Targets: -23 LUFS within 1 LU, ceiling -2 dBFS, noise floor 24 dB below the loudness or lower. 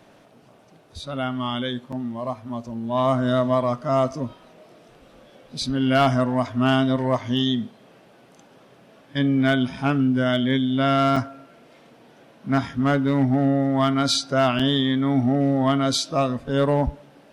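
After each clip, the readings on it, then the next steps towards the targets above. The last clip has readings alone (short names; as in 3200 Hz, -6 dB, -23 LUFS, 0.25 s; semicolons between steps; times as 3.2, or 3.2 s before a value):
clipped 0.5%; flat tops at -12.0 dBFS; dropouts 3; longest dropout 5.3 ms; loudness -22.0 LUFS; peak -12.0 dBFS; loudness target -23.0 LUFS
-> clip repair -12 dBFS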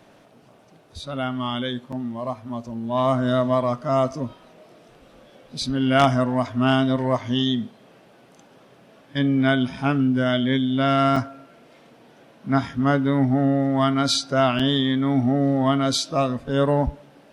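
clipped 0.0%; dropouts 3; longest dropout 5.3 ms
-> interpolate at 1.92/11.16/14.59, 5.3 ms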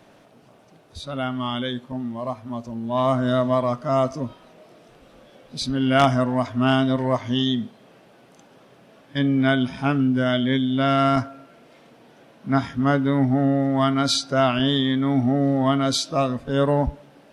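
dropouts 0; loudness -22.0 LUFS; peak -3.0 dBFS; loudness target -23.0 LUFS
-> gain -1 dB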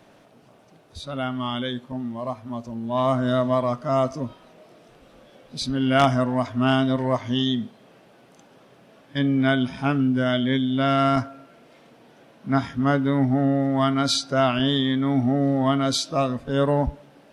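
loudness -23.0 LUFS; peak -4.0 dBFS; noise floor -54 dBFS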